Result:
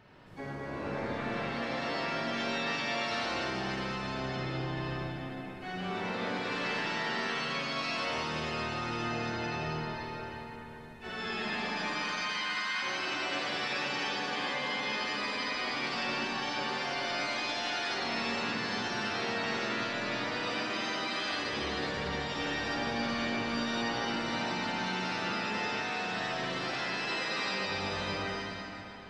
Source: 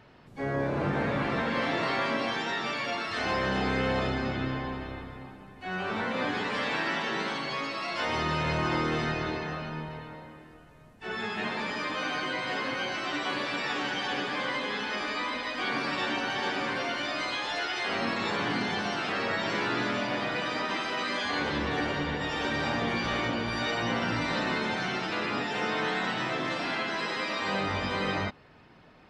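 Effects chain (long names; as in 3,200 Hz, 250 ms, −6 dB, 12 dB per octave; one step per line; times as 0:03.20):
0:11.97–0:12.82: Butterworth high-pass 940 Hz 36 dB per octave
downward compressor, threshold −34 dBFS, peak gain reduction 10 dB
four-comb reverb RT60 3.4 s, DRR −5.5 dB
dynamic equaliser 5,200 Hz, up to +5 dB, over −52 dBFS, Q 1.3
level −4 dB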